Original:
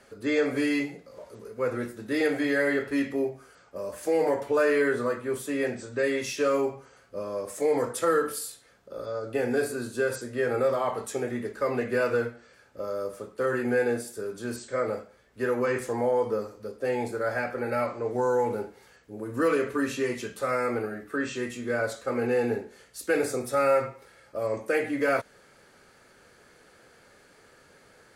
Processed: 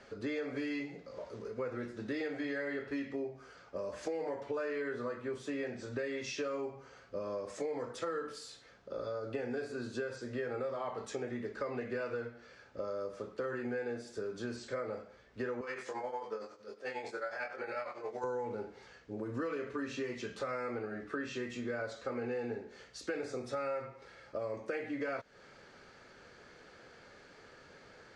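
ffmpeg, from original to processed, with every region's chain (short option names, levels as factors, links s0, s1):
-filter_complex "[0:a]asettb=1/sr,asplit=3[s0][s1][s2];[s0]atrim=end=15.614[s3];[s1]atrim=start=15.61:end=18.24,asetpts=PTS-STARTPTS,afade=t=in:d=0.004:c=qsin,afade=t=out:st=2.626:d=0.004:c=qsin,highpass=f=990:p=1,tremolo=f=11:d=0.76,asplit=2[s4][s5];[s5]adelay=23,volume=0.708[s6];[s4][s6]amix=inputs=2:normalize=0,atrim=end_sample=115983[s7];[s2]atrim=start=18.236[s8];[s3][s7]acrossfade=d=0.004:c1=hsin:c2=qsin[s9];[s9][s8]acrossfade=d=0.004:c1=qsin:c2=hsin,acompressor=threshold=0.0158:ratio=5,lowpass=f=6100:w=0.5412,lowpass=f=6100:w=1.3066"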